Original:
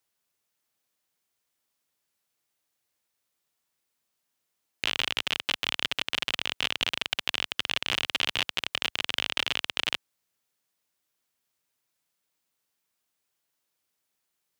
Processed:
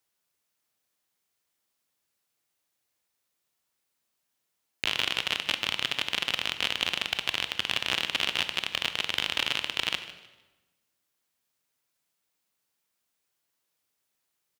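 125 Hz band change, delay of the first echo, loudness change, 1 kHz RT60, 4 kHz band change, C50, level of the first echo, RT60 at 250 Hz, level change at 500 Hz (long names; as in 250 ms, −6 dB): +0.5 dB, 152 ms, +0.5 dB, 1.1 s, +0.5 dB, 10.5 dB, −16.0 dB, 1.4 s, +0.5 dB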